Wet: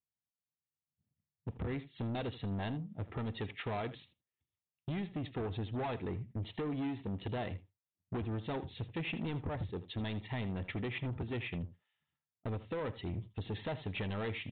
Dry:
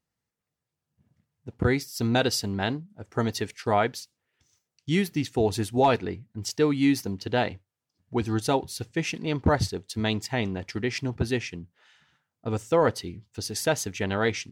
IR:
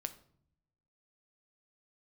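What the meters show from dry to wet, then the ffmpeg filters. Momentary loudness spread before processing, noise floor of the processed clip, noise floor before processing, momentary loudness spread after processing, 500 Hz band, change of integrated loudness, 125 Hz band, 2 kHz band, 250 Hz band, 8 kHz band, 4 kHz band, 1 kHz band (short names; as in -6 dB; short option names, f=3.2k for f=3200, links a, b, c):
11 LU, under -85 dBFS, under -85 dBFS, 4 LU, -14.5 dB, -13.0 dB, -8.0 dB, -13.0 dB, -12.0 dB, under -40 dB, -14.5 dB, -15.5 dB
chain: -af "agate=range=-27dB:threshold=-51dB:ratio=16:detection=peak,highpass=48,lowshelf=f=170:g=7.5,bandreject=f=1.5k:w=6,acompressor=threshold=-32dB:ratio=12,aresample=8000,asoftclip=type=tanh:threshold=-37.5dB,aresample=44100,aecho=1:1:80:0.168,volume=4dB"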